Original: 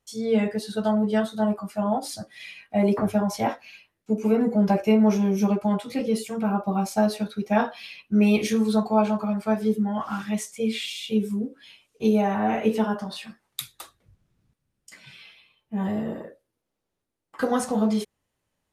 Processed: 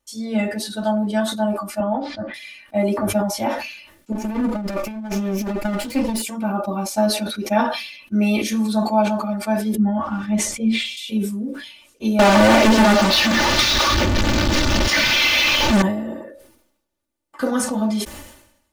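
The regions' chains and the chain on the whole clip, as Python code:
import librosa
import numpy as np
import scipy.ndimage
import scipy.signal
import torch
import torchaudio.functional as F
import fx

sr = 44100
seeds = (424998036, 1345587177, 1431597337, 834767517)

y = fx.chain(x, sr, fx.lowpass(hz=2700.0, slope=24),
    fx.band_squash(depth_pct=100), at=(1.8, 2.34))
y = fx.chain(y, sr, fx.lower_of_two(delay_ms=0.41),
    fx.over_compress(threshold_db=-23.0, ratio=-0.5), at=(4.12, 6.22))
y = fx.chain(y, sr, fx.lowpass(hz=1700.0, slope=6),
    fx.low_shelf(hz=200.0, db=11.5), at=(9.75, 10.97))
y = fx.chain(y, sr, fx.delta_mod(bps=32000, step_db=-31.5),
    fx.leveller(passes=5),
    fx.doppler_dist(depth_ms=0.43), at=(12.19, 15.82))
y = fx.high_shelf(y, sr, hz=6700.0, db=3.5)
y = y + 0.78 * np.pad(y, (int(3.4 * sr / 1000.0), 0))[:len(y)]
y = fx.sustainer(y, sr, db_per_s=69.0)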